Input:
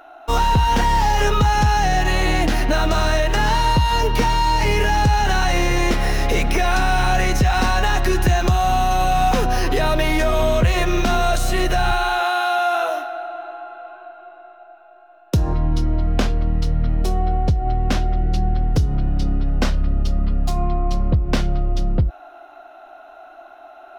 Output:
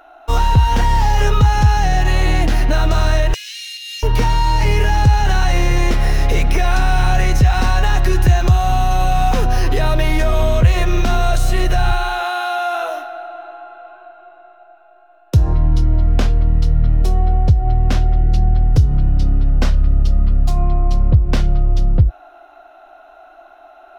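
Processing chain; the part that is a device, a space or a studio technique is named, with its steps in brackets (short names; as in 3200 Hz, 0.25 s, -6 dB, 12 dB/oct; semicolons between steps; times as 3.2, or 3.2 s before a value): 3.34–4.03 elliptic high-pass 2300 Hz, stop band 60 dB; low shelf boost with a cut just above (low shelf 80 Hz +7.5 dB; bell 180 Hz -5 dB 1.1 oct); dynamic EQ 120 Hz, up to +8 dB, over -32 dBFS, Q 1.1; gain -1 dB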